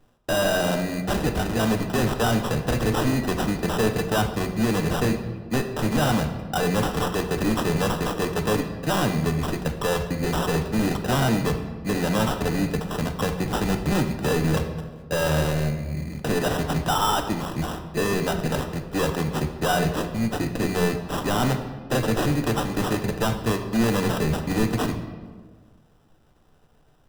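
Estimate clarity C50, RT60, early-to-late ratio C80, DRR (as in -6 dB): 8.5 dB, 1.5 s, 10.0 dB, 5.5 dB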